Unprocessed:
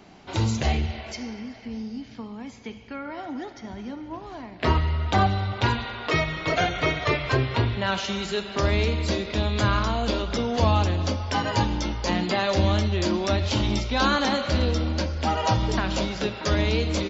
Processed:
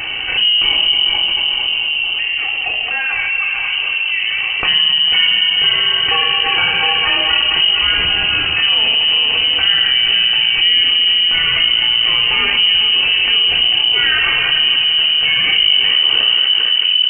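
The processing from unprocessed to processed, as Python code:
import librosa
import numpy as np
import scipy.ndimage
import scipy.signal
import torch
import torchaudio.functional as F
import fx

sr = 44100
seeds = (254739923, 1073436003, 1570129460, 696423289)

y = fx.tape_stop_end(x, sr, length_s=1.72)
y = fx.low_shelf(y, sr, hz=100.0, db=7.0)
y = fx.echo_heads(y, sr, ms=223, heads='first and second', feedback_pct=42, wet_db=-11.5)
y = fx.room_shoebox(y, sr, seeds[0], volume_m3=2400.0, walls='furnished', distance_m=3.4)
y = fx.freq_invert(y, sr, carrier_hz=3000)
y = fx.env_flatten(y, sr, amount_pct=70)
y = F.gain(torch.from_numpy(y), -4.5).numpy()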